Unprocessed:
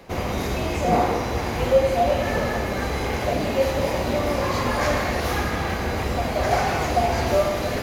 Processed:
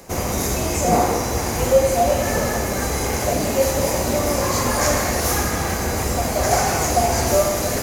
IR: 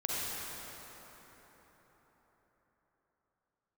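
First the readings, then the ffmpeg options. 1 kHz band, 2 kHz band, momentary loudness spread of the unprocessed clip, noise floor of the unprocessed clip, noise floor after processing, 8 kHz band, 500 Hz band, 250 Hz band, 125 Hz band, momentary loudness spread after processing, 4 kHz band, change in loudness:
+2.0 dB, +1.0 dB, 5 LU, −27 dBFS, −24 dBFS, +15.0 dB, +2.5 dB, +2.5 dB, +2.5 dB, 4 LU, +4.0 dB, +3.5 dB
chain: -af "highshelf=frequency=5000:width_type=q:width=1.5:gain=11.5,volume=2.5dB"

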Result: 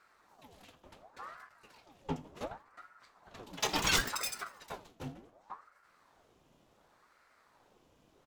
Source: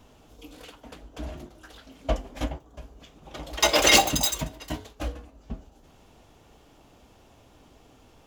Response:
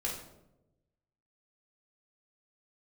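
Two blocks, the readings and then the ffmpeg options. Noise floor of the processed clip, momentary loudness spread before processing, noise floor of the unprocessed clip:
−69 dBFS, 25 LU, −57 dBFS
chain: -filter_complex "[0:a]asplit=5[link_01][link_02][link_03][link_04][link_05];[link_02]adelay=81,afreqshift=39,volume=-22.5dB[link_06];[link_03]adelay=162,afreqshift=78,volume=-27.9dB[link_07];[link_04]adelay=243,afreqshift=117,volume=-33.2dB[link_08];[link_05]adelay=324,afreqshift=156,volume=-38.6dB[link_09];[link_01][link_06][link_07][link_08][link_09]amix=inputs=5:normalize=0,aeval=exprs='val(0)*sin(2*PI*790*n/s+790*0.75/0.69*sin(2*PI*0.69*n/s))':channel_layout=same,volume=-9dB"

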